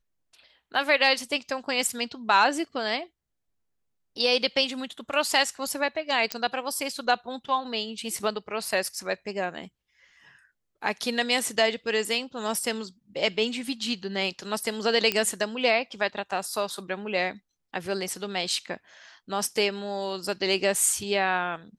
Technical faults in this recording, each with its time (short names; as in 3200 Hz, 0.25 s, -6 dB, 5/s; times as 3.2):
6.32 pop -11 dBFS
15.12 pop -9 dBFS